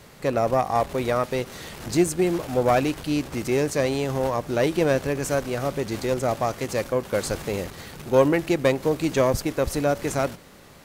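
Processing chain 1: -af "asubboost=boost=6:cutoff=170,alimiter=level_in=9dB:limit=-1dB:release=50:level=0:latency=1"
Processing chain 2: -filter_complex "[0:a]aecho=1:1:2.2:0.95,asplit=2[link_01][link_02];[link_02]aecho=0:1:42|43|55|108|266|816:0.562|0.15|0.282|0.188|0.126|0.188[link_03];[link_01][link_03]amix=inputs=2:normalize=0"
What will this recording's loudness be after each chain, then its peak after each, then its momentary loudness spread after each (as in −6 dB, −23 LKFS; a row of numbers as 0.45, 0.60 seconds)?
−14.0, −20.0 LKFS; −1.0, −1.5 dBFS; 5, 7 LU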